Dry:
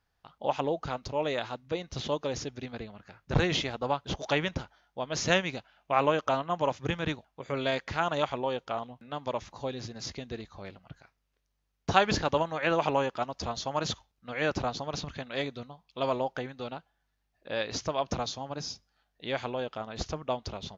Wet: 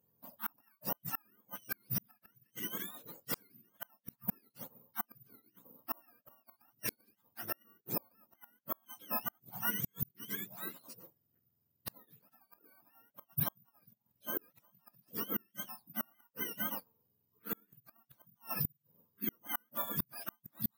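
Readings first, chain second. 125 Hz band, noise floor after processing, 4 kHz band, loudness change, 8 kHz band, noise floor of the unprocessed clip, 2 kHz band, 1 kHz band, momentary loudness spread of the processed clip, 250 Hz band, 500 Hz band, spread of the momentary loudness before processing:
−12.0 dB, −81 dBFS, −15.0 dB, −8.0 dB, can't be measured, −79 dBFS, −13.0 dB, −17.0 dB, 15 LU, −12.0 dB, −22.0 dB, 14 LU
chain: frequency axis turned over on the octave scale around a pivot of 870 Hz
bad sample-rate conversion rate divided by 3×, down filtered, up zero stuff
gate with flip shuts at −16 dBFS, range −39 dB
level −2 dB

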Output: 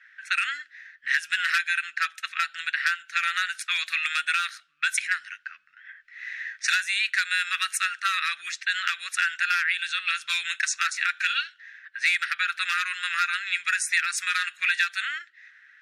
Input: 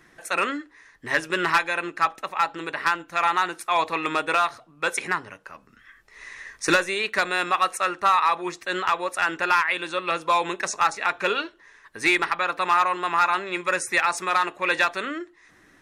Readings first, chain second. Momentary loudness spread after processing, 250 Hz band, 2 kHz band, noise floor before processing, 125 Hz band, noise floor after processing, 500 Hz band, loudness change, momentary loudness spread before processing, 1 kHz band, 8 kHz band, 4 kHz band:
9 LU, below −40 dB, +1.5 dB, −56 dBFS, below −35 dB, −58 dBFS, below −40 dB, −2.0 dB, 8 LU, −10.0 dB, +2.5 dB, +3.0 dB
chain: low-pass that shuts in the quiet parts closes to 2,000 Hz, open at −21.5 dBFS
elliptic high-pass filter 1,500 Hz, stop band 40 dB
downward compressor 3 to 1, threshold −30 dBFS, peak gain reduction 9.5 dB
level +7.5 dB

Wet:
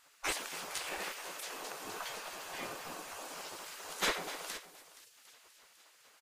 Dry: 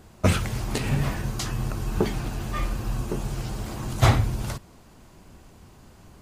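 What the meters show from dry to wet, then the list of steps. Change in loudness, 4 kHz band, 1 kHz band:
−12.5 dB, −4.5 dB, −9.5 dB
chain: parametric band 250 Hz +4.5 dB 0.34 octaves
feedback echo with a high-pass in the loop 251 ms, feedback 70%, high-pass 650 Hz, level −13 dB
gate on every frequency bin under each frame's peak −20 dB weak
on a send: single-tap delay 471 ms −16.5 dB
on the sum: level −4 dB

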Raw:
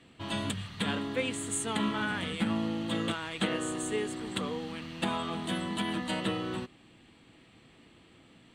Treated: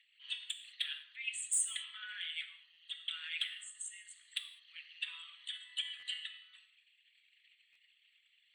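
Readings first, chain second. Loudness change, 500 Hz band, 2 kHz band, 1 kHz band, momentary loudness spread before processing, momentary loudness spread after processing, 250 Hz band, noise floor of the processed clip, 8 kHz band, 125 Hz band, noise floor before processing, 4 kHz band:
−7.0 dB, below −40 dB, −7.5 dB, −27.5 dB, 5 LU, 15 LU, below −40 dB, −73 dBFS, +0.5 dB, below −40 dB, −59 dBFS, −2.0 dB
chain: spectral envelope exaggerated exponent 2
Butterworth high-pass 2,000 Hz 36 dB per octave
gain into a clipping stage and back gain 27 dB
reverb whose tail is shaped and stops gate 230 ms falling, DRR 7 dB
buffer that repeats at 0:02.73/0:05.99/0:07.72, samples 512, times 2
level +2 dB

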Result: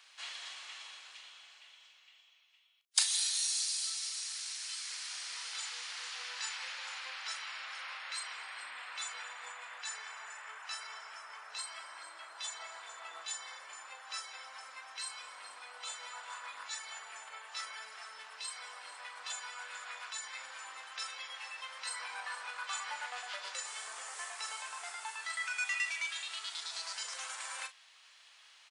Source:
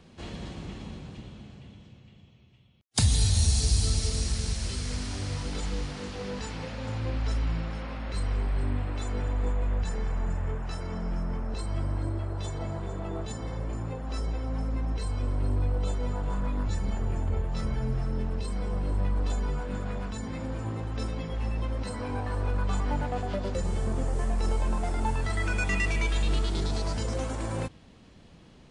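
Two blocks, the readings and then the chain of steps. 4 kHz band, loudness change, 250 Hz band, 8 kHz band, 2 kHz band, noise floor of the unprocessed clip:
0.0 dB, −8.5 dB, below −40 dB, 0.0 dB, −1.0 dB, −53 dBFS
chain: Bessel high-pass filter 1,700 Hz, order 4
speech leveller within 5 dB 2 s
double-tracking delay 37 ms −11 dB

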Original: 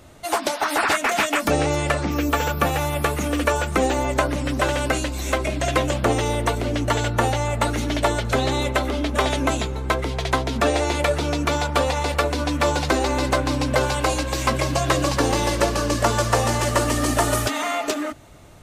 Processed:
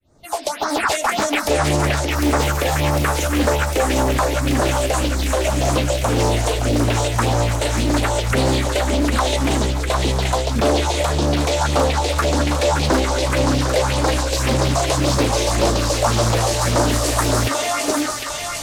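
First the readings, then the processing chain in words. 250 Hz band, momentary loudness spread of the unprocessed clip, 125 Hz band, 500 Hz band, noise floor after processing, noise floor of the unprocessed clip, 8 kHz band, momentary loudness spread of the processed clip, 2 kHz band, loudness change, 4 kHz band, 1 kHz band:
+3.5 dB, 4 LU, +5.0 dB, +3.0 dB, −26 dBFS, −31 dBFS, +5.0 dB, 2 LU, +1.0 dB, +3.0 dB, +4.5 dB, +2.0 dB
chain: fade in at the beginning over 0.76 s
in parallel at +1 dB: brickwall limiter −15 dBFS, peak gain reduction 10 dB
on the sum: all-pass phaser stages 4, 1.8 Hz, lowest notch 190–2,900 Hz
soft clipping −5 dBFS, distortion −28 dB
on a send: feedback echo with a high-pass in the loop 753 ms, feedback 79%, high-pass 970 Hz, level −3.5 dB
on the sum: highs frequency-modulated by the lows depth 0.44 ms

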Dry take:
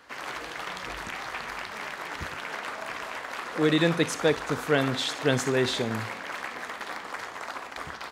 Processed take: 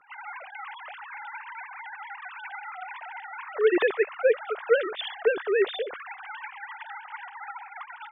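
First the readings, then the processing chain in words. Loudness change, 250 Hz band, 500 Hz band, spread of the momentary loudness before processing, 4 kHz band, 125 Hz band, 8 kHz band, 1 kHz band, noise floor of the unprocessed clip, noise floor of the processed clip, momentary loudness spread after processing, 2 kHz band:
0.0 dB, −8.0 dB, +3.5 dB, 12 LU, −7.5 dB, below −35 dB, below −40 dB, −2.5 dB, −40 dBFS, −45 dBFS, 16 LU, −1.5 dB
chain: three sine waves on the formant tracks

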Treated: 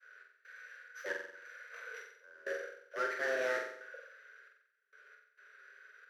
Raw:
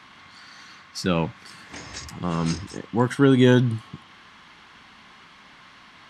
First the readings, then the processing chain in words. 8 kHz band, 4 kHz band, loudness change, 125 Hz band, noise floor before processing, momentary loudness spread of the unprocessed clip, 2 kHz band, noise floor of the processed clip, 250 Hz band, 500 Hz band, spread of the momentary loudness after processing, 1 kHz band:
−16.5 dB, −19.5 dB, −17.5 dB, below −40 dB, −50 dBFS, 20 LU, −5.0 dB, −74 dBFS, −33.5 dB, −14.5 dB, 23 LU, −13.0 dB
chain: samples sorted by size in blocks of 8 samples
frequency shifter +390 Hz
tape wow and flutter 19 cents
in parallel at −6 dB: wrap-around overflow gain 17.5 dB
on the sum: downward expander −41 dBFS
gate pattern "x.xxx.xxx.." 67 BPM −24 dB
pair of resonant band-passes 780 Hz, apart 2 octaves
on a send: flutter between parallel walls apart 7.8 metres, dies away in 0.68 s
on the sum: level −1.5 dB

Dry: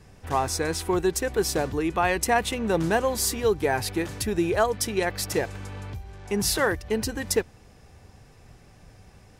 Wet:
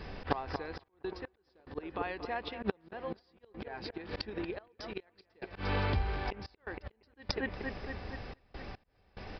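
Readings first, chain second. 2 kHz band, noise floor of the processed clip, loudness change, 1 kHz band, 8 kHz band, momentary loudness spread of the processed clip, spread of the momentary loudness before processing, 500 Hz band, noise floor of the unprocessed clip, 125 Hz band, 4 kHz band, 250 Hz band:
−12.0 dB, −72 dBFS, −14.0 dB, −12.5 dB, below −35 dB, 14 LU, 7 LU, −15.0 dB, −53 dBFS, −7.5 dB, −12.5 dB, −13.5 dB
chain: parametric band 120 Hz −9.5 dB 1.2 octaves
gate with flip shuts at −19 dBFS, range −25 dB
downsampling to 11,025 Hz
on a send: bucket-brigade delay 233 ms, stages 4,096, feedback 65%, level −11.5 dB
on the sum: volume swells 150 ms
gate pattern "xxxx.x..x" 72 BPM −24 dB
level +10 dB

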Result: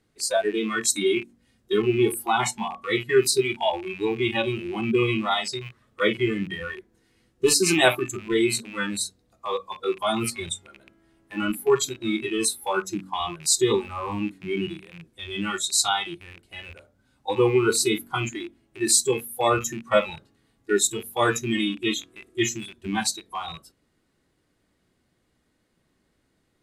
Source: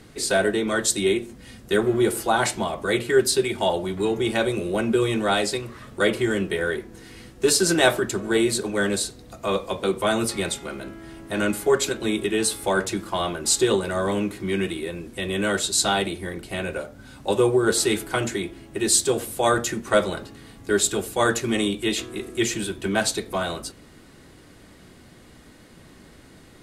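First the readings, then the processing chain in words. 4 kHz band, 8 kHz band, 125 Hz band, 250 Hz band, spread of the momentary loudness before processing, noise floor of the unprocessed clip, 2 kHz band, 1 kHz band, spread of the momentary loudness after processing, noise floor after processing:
−1.0 dB, −0.5 dB, −2.0 dB, −2.0 dB, 12 LU, −49 dBFS, −2.0 dB, −0.5 dB, 15 LU, −70 dBFS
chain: loose part that buzzes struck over −35 dBFS, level −11 dBFS
noise reduction from a noise print of the clip's start 21 dB
hum removal 47.22 Hz, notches 6

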